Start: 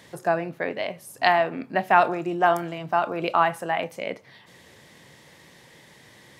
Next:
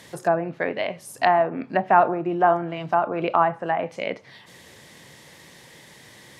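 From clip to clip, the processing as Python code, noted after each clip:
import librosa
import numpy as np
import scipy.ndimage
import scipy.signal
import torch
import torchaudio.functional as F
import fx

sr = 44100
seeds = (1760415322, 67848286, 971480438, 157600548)

y = fx.env_lowpass_down(x, sr, base_hz=1200.0, full_db=-20.5)
y = fx.high_shelf(y, sr, hz=4700.0, db=5.0)
y = y * librosa.db_to_amplitude(2.5)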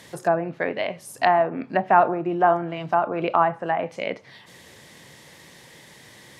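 y = x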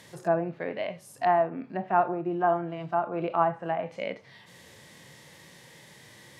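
y = fx.hpss(x, sr, part='percussive', gain_db=-11)
y = fx.rider(y, sr, range_db=3, speed_s=2.0)
y = y * librosa.db_to_amplitude(-3.5)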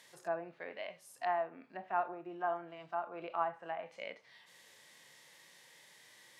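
y = fx.highpass(x, sr, hz=1000.0, slope=6)
y = y * librosa.db_to_amplitude(-6.5)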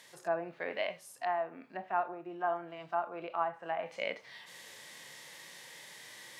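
y = fx.rider(x, sr, range_db=10, speed_s=0.5)
y = y * librosa.db_to_amplitude(3.0)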